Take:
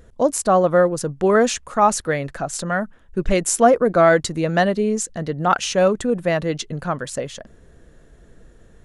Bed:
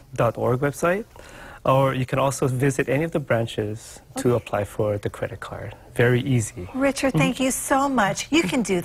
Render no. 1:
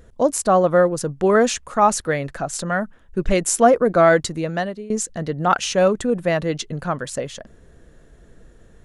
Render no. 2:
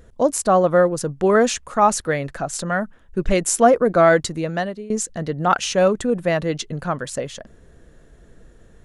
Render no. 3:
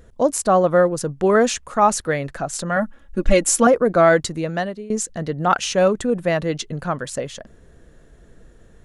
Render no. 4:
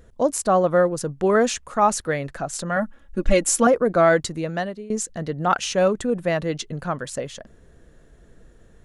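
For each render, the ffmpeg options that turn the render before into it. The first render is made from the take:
ffmpeg -i in.wav -filter_complex "[0:a]asplit=2[link_01][link_02];[link_01]atrim=end=4.9,asetpts=PTS-STARTPTS,afade=type=out:start_time=4.19:duration=0.71:silence=0.112202[link_03];[link_02]atrim=start=4.9,asetpts=PTS-STARTPTS,afade=type=in:duration=0.004:curve=hsin:silence=0.112202[link_04];[link_03][link_04]concat=n=2:v=0:a=1" out.wav
ffmpeg -i in.wav -af anull out.wav
ffmpeg -i in.wav -filter_complex "[0:a]asettb=1/sr,asplit=3[link_01][link_02][link_03];[link_01]atrim=end=2.764[link_04];[link_02]atrim=start=2.76:end=3.67,asetpts=PTS-STARTPTS,afade=type=in:duration=0.004:curve=qsin,afade=type=out:start_time=0.906:duration=0.004:curve=qsin,aecho=1:1:3.6:0.88,atrim=end_sample=40131[link_05];[link_03]atrim=start=3.666[link_06];[link_04][link_05]acrossfade=duration=0.004:curve1=hsin:curve2=qsin[link_07];[link_07][link_06]acrossfade=duration=0.004:curve1=qsin:curve2=hsin" out.wav
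ffmpeg -i in.wav -af "volume=-2.5dB" out.wav

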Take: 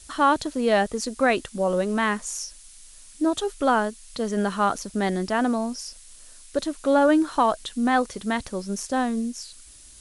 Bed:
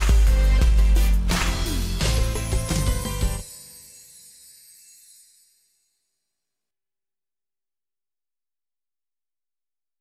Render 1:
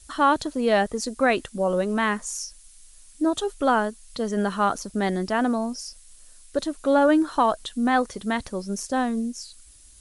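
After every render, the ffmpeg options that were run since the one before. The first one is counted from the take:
ffmpeg -i in.wav -af "afftdn=noise_reduction=6:noise_floor=-48" out.wav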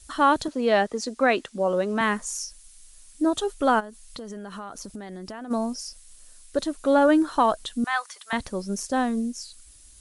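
ffmpeg -i in.wav -filter_complex "[0:a]asettb=1/sr,asplit=3[link_01][link_02][link_03];[link_01]atrim=end=0.484[link_04];[link_02]atrim=start=0.48:end=2.01,asetpts=PTS-STARTPTS,afade=type=in:duration=0.004:curve=qsin,afade=type=out:start_time=1.526:duration=0.004:curve=qsin,acrossover=split=170 7600:gain=0.158 1 0.224[link_05][link_06][link_07];[link_05][link_06][link_07]amix=inputs=3:normalize=0[link_08];[link_03]atrim=start=2.006[link_09];[link_04][link_08]acrossfade=duration=0.004:curve1=hsin:curve2=qsin[link_10];[link_10][link_09]acrossfade=duration=0.004:curve1=qsin:curve2=hsin,asplit=3[link_11][link_12][link_13];[link_11]afade=type=out:start_time=3.79:duration=0.02[link_14];[link_12]acompressor=threshold=-33dB:ratio=12:attack=3.2:release=140:knee=1:detection=peak,afade=type=in:start_time=3.79:duration=0.02,afade=type=out:start_time=5.5:duration=0.02[link_15];[link_13]afade=type=in:start_time=5.5:duration=0.02[link_16];[link_14][link_15][link_16]amix=inputs=3:normalize=0,asettb=1/sr,asplit=3[link_17][link_18][link_19];[link_17]atrim=end=7.844[link_20];[link_18]atrim=start=7.84:end=8.33,asetpts=PTS-STARTPTS,afade=type=in:duration=0.004:curve=qsin,afade=type=out:start_time=0.486:duration=0.004:curve=qsin,highpass=frequency=940:width=0.5412,highpass=frequency=940:width=1.3066[link_21];[link_19]atrim=start=8.326[link_22];[link_20][link_21]acrossfade=duration=0.004:curve1=hsin:curve2=qsin[link_23];[link_23][link_22]acrossfade=duration=0.004:curve1=qsin:curve2=hsin" out.wav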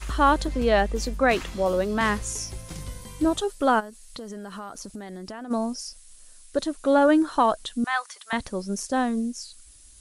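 ffmpeg -i in.wav -i bed.wav -filter_complex "[1:a]volume=-14dB[link_01];[0:a][link_01]amix=inputs=2:normalize=0" out.wav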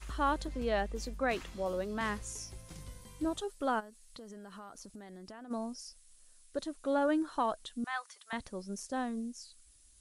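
ffmpeg -i in.wav -af "volume=-11.5dB" out.wav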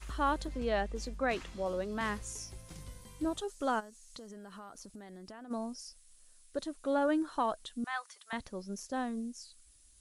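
ffmpeg -i in.wav -filter_complex "[0:a]asettb=1/sr,asplit=3[link_01][link_02][link_03];[link_01]atrim=end=0.584[link_04];[link_02]atrim=start=0.58:end=1.92,asetpts=PTS-STARTPTS,afade=type=in:duration=0.004:curve=qsin,afade=type=out:start_time=1.336:duration=0.004:curve=qsin,lowpass=10000[link_05];[link_03]atrim=start=1.916[link_06];[link_04][link_05]acrossfade=duration=0.004:curve1=hsin:curve2=qsin[link_07];[link_07][link_06]acrossfade=duration=0.004:curve1=qsin:curve2=hsin,asettb=1/sr,asplit=3[link_08][link_09][link_10];[link_08]atrim=end=3.484[link_11];[link_09]atrim=start=3.48:end=4.27,asetpts=PTS-STARTPTS,afade=type=in:duration=0.004:curve=qsin,afade=type=out:start_time=0.786:duration=0.004:curve=qsin,equalizer=frequency=6400:width=1.8:gain=9.5[link_12];[link_10]atrim=start=4.266[link_13];[link_11][link_12]acrossfade=duration=0.004:curve1=hsin:curve2=qsin[link_14];[link_14][link_13]acrossfade=duration=0.004:curve1=qsin:curve2=hsin,asettb=1/sr,asplit=3[link_15][link_16][link_17];[link_15]atrim=end=8.414[link_18];[link_16]atrim=start=8.41:end=8.94,asetpts=PTS-STARTPTS,afade=type=in:duration=0.004:curve=qsin,afade=type=out:start_time=0.526:duration=0.004:curve=qsin,equalizer=frequency=8800:width_type=o:width=0.3:gain=-6.5[link_19];[link_17]atrim=start=8.936[link_20];[link_18][link_19]acrossfade=duration=0.004:curve1=hsin:curve2=qsin[link_21];[link_21][link_20]acrossfade=duration=0.004:curve1=qsin:curve2=hsin" out.wav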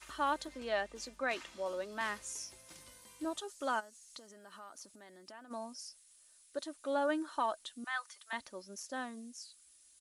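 ffmpeg -i in.wav -af "highpass=frequency=740:poles=1,aecho=1:1:3.3:0.33" out.wav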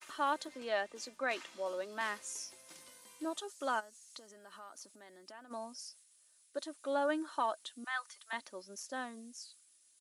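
ffmpeg -i in.wav -af "agate=range=-33dB:threshold=-59dB:ratio=3:detection=peak,highpass=220" out.wav

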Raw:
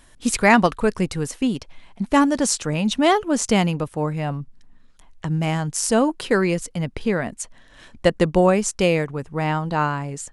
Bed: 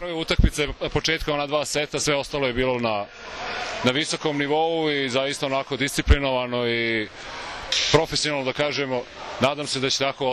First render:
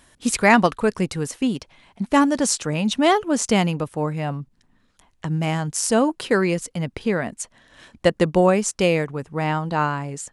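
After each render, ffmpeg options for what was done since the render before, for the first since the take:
ffmpeg -i in.wav -af "highpass=frequency=77:poles=1" out.wav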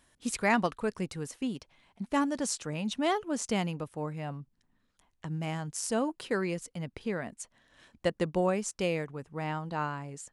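ffmpeg -i in.wav -af "volume=-11.5dB" out.wav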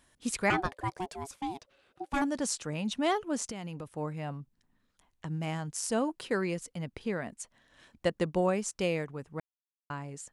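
ffmpeg -i in.wav -filter_complex "[0:a]asettb=1/sr,asplit=3[link_01][link_02][link_03];[link_01]atrim=end=0.504[link_04];[link_02]atrim=start=0.5:end=2.22,asetpts=PTS-STARTPTS,afade=type=in:duration=0.004:curve=qsin,afade=type=out:start_time=1.716:duration=0.004:curve=qsin,aeval=exprs='val(0)*sin(2*PI*550*n/s)':channel_layout=same[link_05];[link_03]atrim=start=2.216[link_06];[link_04][link_05]acrossfade=duration=0.004:curve1=hsin:curve2=qsin[link_07];[link_07][link_06]acrossfade=duration=0.004:curve1=qsin:curve2=hsin,asettb=1/sr,asplit=3[link_08][link_09][link_10];[link_08]atrim=end=3.444[link_11];[link_09]atrim=start=3.44:end=3.97,asetpts=PTS-STARTPTS,afade=type=in:duration=0.004:curve=qsin,afade=type=out:start_time=0.526:duration=0.004:curve=qsin,acompressor=threshold=-35dB:ratio=12:attack=3.2:release=140:knee=1:detection=peak[link_12];[link_10]atrim=start=3.966[link_13];[link_11][link_12]acrossfade=duration=0.004:curve1=hsin:curve2=qsin[link_14];[link_14][link_13]acrossfade=duration=0.004:curve1=qsin:curve2=hsin,asplit=3[link_15][link_16][link_17];[link_15]atrim=end=9.4,asetpts=PTS-STARTPTS,afade=type=out:start_time=9.396:duration=0.004:curve=hsin[link_18];[link_16]atrim=start=9.4:end=9.9,asetpts=PTS-STARTPTS,volume=0[link_19];[link_17]atrim=start=9.9,asetpts=PTS-STARTPTS,afade=type=in:duration=0.004:curve=hsin[link_20];[link_18][link_19][link_20]concat=n=3:v=0:a=1" out.wav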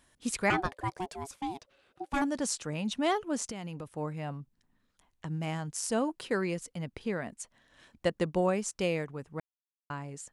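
ffmpeg -i in.wav -af anull out.wav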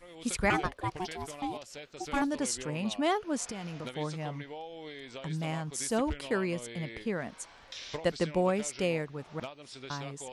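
ffmpeg -i in.wav -i bed.wav -filter_complex "[1:a]volume=-21.5dB[link_01];[0:a][link_01]amix=inputs=2:normalize=0" out.wav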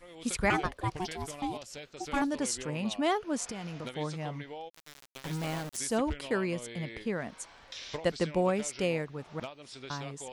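ffmpeg -i in.wav -filter_complex "[0:a]asettb=1/sr,asplit=3[link_01][link_02][link_03];[link_01]atrim=end=0.704[link_04];[link_02]atrim=start=0.7:end=1.9,asetpts=PTS-STARTPTS,afade=type=in:duration=0.004:curve=qsin,afade=type=out:start_time=1.196:duration=0.004:curve=qsin,bass=frequency=250:gain=4,treble=frequency=4000:gain=3[link_05];[link_03]atrim=start=1.896[link_06];[link_04][link_05]acrossfade=duration=0.004:curve1=hsin:curve2=qsin[link_07];[link_07][link_06]acrossfade=duration=0.004:curve1=qsin:curve2=hsin,asplit=3[link_08][link_09][link_10];[link_08]afade=type=out:start_time=4.68:duration=0.02[link_11];[link_09]aeval=exprs='val(0)*gte(abs(val(0)),0.0168)':channel_layout=same,afade=type=in:start_time=4.68:duration=0.02,afade=type=out:start_time=5.76:duration=0.02[link_12];[link_10]afade=type=in:start_time=5.76:duration=0.02[link_13];[link_11][link_12][link_13]amix=inputs=3:normalize=0" out.wav

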